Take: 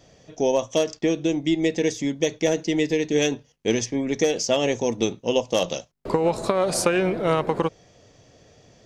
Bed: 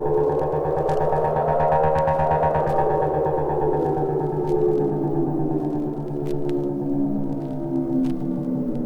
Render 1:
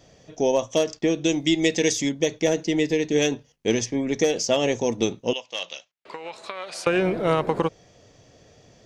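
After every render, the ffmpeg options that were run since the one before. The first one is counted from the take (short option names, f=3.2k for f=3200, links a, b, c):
-filter_complex "[0:a]asettb=1/sr,asplit=3[a][b][c];[a]atrim=end=1.244[d];[b]atrim=start=1.24:end=2.09,asetpts=PTS-STARTPTS,afade=t=in:d=0.004:c=qsin,afade=t=out:st=0.846:d=0.004:c=qsin,highshelf=f=2.2k:g=10[e];[c]atrim=start=2.086[f];[d][e]acrossfade=d=0.004:c1=hsin:c2=qsin[g];[g][f]acrossfade=d=0.004:c1=qsin:c2=hsin,asettb=1/sr,asplit=3[h][i][j];[h]atrim=end=5.334[k];[i]atrim=start=5.33:end=6.87,asetpts=PTS-STARTPTS,afade=t=in:d=0.004:c=qsin,afade=t=out:st=1.536:d=0.004:c=qsin,bandpass=f=2.6k:t=q:w=1.3[l];[j]atrim=start=6.866[m];[k][l]acrossfade=d=0.004:c1=hsin:c2=qsin[n];[n][m]acrossfade=d=0.004:c1=qsin:c2=hsin"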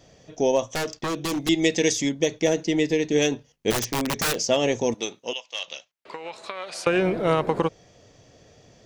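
-filter_complex "[0:a]asettb=1/sr,asplit=3[a][b][c];[a]atrim=end=0.744[d];[b]atrim=start=0.74:end=1.49,asetpts=PTS-STARTPTS,afade=t=in:d=0.004:c=qsin,afade=t=out:st=0.746:d=0.004:c=qsin,aeval=exprs='0.0891*(abs(mod(val(0)/0.0891+3,4)-2)-1)':c=same[e];[c]atrim=start=1.486[f];[d][e]acrossfade=d=0.004:c1=hsin:c2=qsin[g];[g][f]acrossfade=d=0.004:c1=qsin:c2=hsin,asplit=3[h][i][j];[h]afade=t=out:st=3.7:d=0.02[k];[i]aeval=exprs='(mod(8.91*val(0)+1,2)-1)/8.91':c=same,afade=t=in:st=3.7:d=0.02,afade=t=out:st=4.34:d=0.02[l];[j]afade=t=in:st=4.34:d=0.02[m];[k][l][m]amix=inputs=3:normalize=0,asettb=1/sr,asplit=3[n][o][p];[n]atrim=end=4.944[q];[o]atrim=start=4.94:end=5.68,asetpts=PTS-STARTPTS,afade=t=in:d=0.004:c=qsin,afade=t=out:st=0.736:d=0.004:c=qsin,highpass=f=1k:p=1[r];[p]atrim=start=5.676[s];[q][r]acrossfade=d=0.004:c1=hsin:c2=qsin[t];[t][s]acrossfade=d=0.004:c1=qsin:c2=hsin"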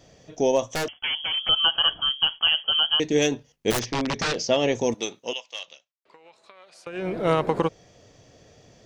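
-filter_complex "[0:a]asettb=1/sr,asplit=3[a][b][c];[a]atrim=end=0.884[d];[b]atrim=start=0.88:end=3,asetpts=PTS-STARTPTS,afade=t=in:d=0.004:c=qsin,afade=t=out:st=2.116:d=0.004:c=qsin,lowpass=f=2.9k:t=q:w=0.5098,lowpass=f=2.9k:t=q:w=0.6013,lowpass=f=2.9k:t=q:w=0.9,lowpass=f=2.9k:t=q:w=2.563,afreqshift=-3400[e];[c]atrim=start=2.996[f];[d][e]acrossfade=d=0.004:c1=hsin:c2=qsin[g];[g][f]acrossfade=d=0.004:c1=qsin:c2=hsin,asettb=1/sr,asplit=3[h][i][j];[h]atrim=end=3.804[k];[i]atrim=start=3.8:end=4.75,asetpts=PTS-STARTPTS,afade=t=in:d=0.004:c=qsin,afade=t=out:st=0.946:d=0.004:c=qsin,lowpass=f=5.7k:w=0.5412,lowpass=f=5.7k:w=1.3066[l];[j]atrim=start=4.746[m];[k][l]acrossfade=d=0.004:c1=hsin:c2=qsin[n];[n][m]acrossfade=d=0.004:c1=qsin:c2=hsin,asplit=3[o][p][q];[o]atrim=end=5.79,asetpts=PTS-STARTPTS,afade=t=out:st=5.43:d=0.36:silence=0.158489[r];[p]atrim=start=5.79:end=6.92,asetpts=PTS-STARTPTS,volume=-16dB[s];[q]atrim=start=6.92,asetpts=PTS-STARTPTS,afade=t=in:d=0.36:silence=0.158489[t];[r][s][t]concat=n=3:v=0:a=1"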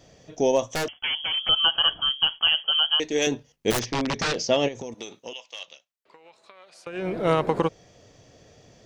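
-filter_complex "[0:a]asettb=1/sr,asplit=3[a][b][c];[a]atrim=end=2.664[d];[b]atrim=start=2.66:end=3.27,asetpts=PTS-STARTPTS,afade=t=in:d=0.004:c=qsin,afade=t=out:st=0.606:d=0.004:c=qsin,equalizer=f=140:w=0.67:g=-12.5[e];[c]atrim=start=3.266[f];[d][e]acrossfade=d=0.004:c1=hsin:c2=qsin[g];[g][f]acrossfade=d=0.004:c1=qsin:c2=hsin,asplit=3[h][i][j];[h]afade=t=out:st=4.67:d=0.02[k];[i]acompressor=threshold=-32dB:ratio=5:attack=3.2:release=140:knee=1:detection=peak,afade=t=in:st=4.67:d=0.02,afade=t=out:st=5.6:d=0.02[l];[j]afade=t=in:st=5.6:d=0.02[m];[k][l][m]amix=inputs=3:normalize=0"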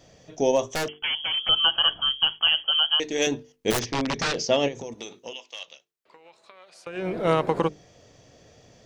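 -af "bandreject=f=50:t=h:w=6,bandreject=f=100:t=h:w=6,bandreject=f=150:t=h:w=6,bandreject=f=200:t=h:w=6,bandreject=f=250:t=h:w=6,bandreject=f=300:t=h:w=6,bandreject=f=350:t=h:w=6,bandreject=f=400:t=h:w=6,bandreject=f=450:t=h:w=6"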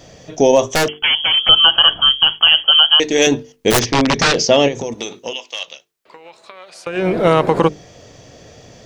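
-af "alimiter=level_in=12dB:limit=-1dB:release=50:level=0:latency=1"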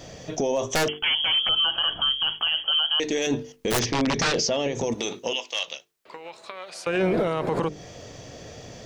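-af "acompressor=threshold=-16dB:ratio=6,alimiter=limit=-15.5dB:level=0:latency=1:release=11"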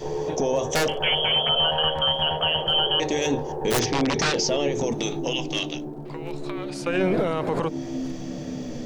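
-filter_complex "[1:a]volume=-8.5dB[a];[0:a][a]amix=inputs=2:normalize=0"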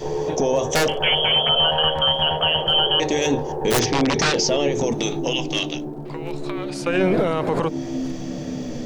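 -af "volume=3.5dB"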